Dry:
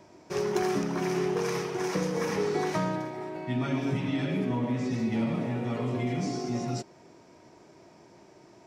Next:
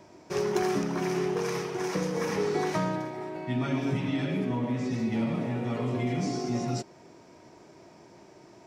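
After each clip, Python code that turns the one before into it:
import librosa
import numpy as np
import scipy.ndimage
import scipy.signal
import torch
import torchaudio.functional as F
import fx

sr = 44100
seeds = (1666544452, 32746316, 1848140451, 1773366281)

y = fx.rider(x, sr, range_db=3, speed_s=2.0)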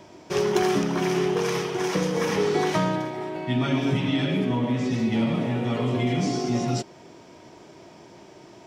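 y = fx.peak_eq(x, sr, hz=3200.0, db=7.0, octaves=0.41)
y = F.gain(torch.from_numpy(y), 5.0).numpy()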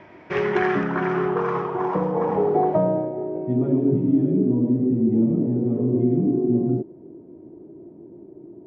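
y = fx.filter_sweep_lowpass(x, sr, from_hz=2000.0, to_hz=340.0, start_s=0.43, end_s=4.13, q=2.8)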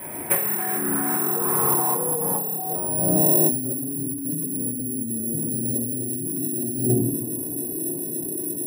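y = (np.kron(scipy.signal.resample_poly(x, 1, 4), np.eye(4)[0]) * 4)[:len(x)]
y = fx.room_shoebox(y, sr, seeds[0], volume_m3=170.0, walls='mixed', distance_m=2.0)
y = fx.over_compress(y, sr, threshold_db=-18.0, ratio=-1.0)
y = F.gain(torch.from_numpy(y), -6.5).numpy()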